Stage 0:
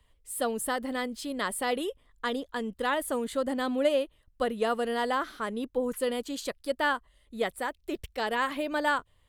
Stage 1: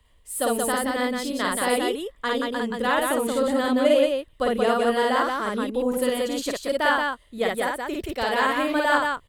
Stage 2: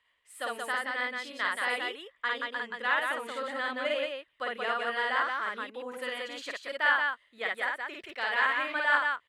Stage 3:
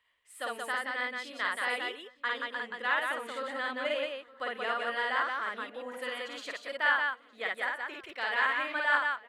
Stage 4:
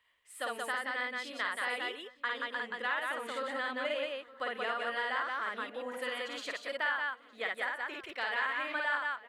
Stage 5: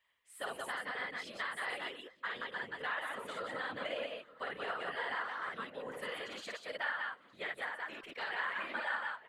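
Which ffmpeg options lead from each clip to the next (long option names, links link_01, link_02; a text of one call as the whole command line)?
ffmpeg -i in.wav -af "aecho=1:1:52.48|177.8:0.891|0.708,volume=3.5dB" out.wav
ffmpeg -i in.wav -af "bandpass=frequency=1900:width_type=q:width=1.5:csg=0" out.wav
ffmpeg -i in.wav -filter_complex "[0:a]asplit=2[link_01][link_02];[link_02]adelay=913,lowpass=frequency=2000:poles=1,volume=-19dB,asplit=2[link_03][link_04];[link_04]adelay=913,lowpass=frequency=2000:poles=1,volume=0.5,asplit=2[link_05][link_06];[link_06]adelay=913,lowpass=frequency=2000:poles=1,volume=0.5,asplit=2[link_07][link_08];[link_08]adelay=913,lowpass=frequency=2000:poles=1,volume=0.5[link_09];[link_01][link_03][link_05][link_07][link_09]amix=inputs=5:normalize=0,volume=-1.5dB" out.wav
ffmpeg -i in.wav -af "acompressor=threshold=-33dB:ratio=2.5,volume=1dB" out.wav
ffmpeg -i in.wav -af "afftfilt=real='hypot(re,im)*cos(2*PI*random(0))':imag='hypot(re,im)*sin(2*PI*random(1))':win_size=512:overlap=0.75,volume=1.5dB" out.wav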